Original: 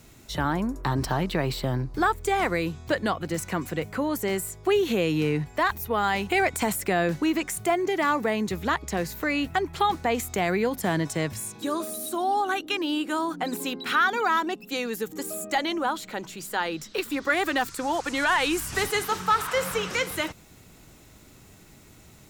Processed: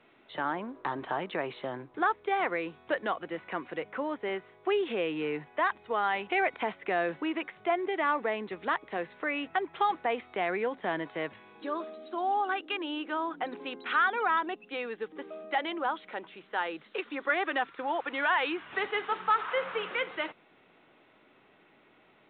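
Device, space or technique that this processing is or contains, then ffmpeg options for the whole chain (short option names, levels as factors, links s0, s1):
telephone: -af "highpass=380,lowpass=3100,volume=0.668" -ar 8000 -c:a pcm_mulaw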